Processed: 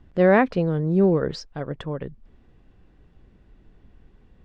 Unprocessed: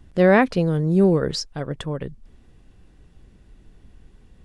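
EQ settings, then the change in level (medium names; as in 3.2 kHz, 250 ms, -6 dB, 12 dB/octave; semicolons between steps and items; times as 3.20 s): distance through air 72 m; bass shelf 220 Hz -4 dB; treble shelf 3.9 kHz -10.5 dB; 0.0 dB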